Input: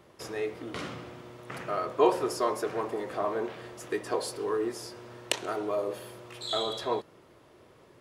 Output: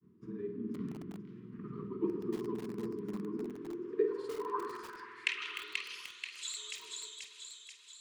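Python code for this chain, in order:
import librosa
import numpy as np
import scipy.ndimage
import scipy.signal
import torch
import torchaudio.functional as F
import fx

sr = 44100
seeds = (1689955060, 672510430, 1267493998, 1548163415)

y = fx.pitch_trill(x, sr, semitones=-1.0, every_ms=115)
y = scipy.signal.sosfilt(scipy.signal.ellip(3, 1.0, 40, [430.0, 1000.0], 'bandstop', fs=sr, output='sos'), y)
y = fx.granulator(y, sr, seeds[0], grain_ms=100.0, per_s=20.0, spray_ms=100.0, spread_st=0)
y = fx.filter_sweep_bandpass(y, sr, from_hz=200.0, to_hz=7200.0, start_s=3.3, end_s=6.23, q=4.7)
y = fx.doubler(y, sr, ms=49.0, db=-10.5)
y = fx.echo_wet_highpass(y, sr, ms=484, feedback_pct=57, hz=2200.0, wet_db=-3)
y = fx.rev_spring(y, sr, rt60_s=2.0, pass_ms=(49,), chirp_ms=75, drr_db=7.0)
y = fx.echo_crushed(y, sr, ms=301, feedback_pct=35, bits=8, wet_db=-10.5)
y = y * 10.0 ** (10.5 / 20.0)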